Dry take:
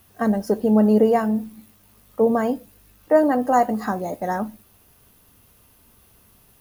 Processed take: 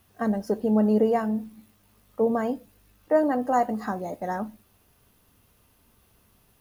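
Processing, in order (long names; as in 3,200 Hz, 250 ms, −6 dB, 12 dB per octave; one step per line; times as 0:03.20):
high-shelf EQ 8,600 Hz −6 dB
level −5 dB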